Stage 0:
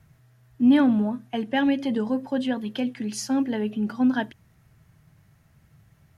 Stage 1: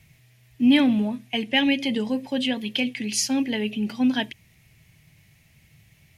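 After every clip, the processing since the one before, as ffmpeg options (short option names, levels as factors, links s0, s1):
-af "highshelf=f=1800:t=q:w=3:g=8"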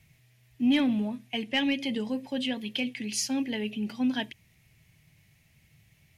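-af "asoftclip=type=tanh:threshold=0.376,volume=0.531"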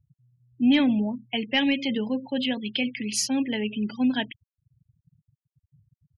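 -af "afftfilt=real='re*gte(hypot(re,im),0.00891)':imag='im*gte(hypot(re,im),0.00891)':win_size=1024:overlap=0.75,volume=1.58"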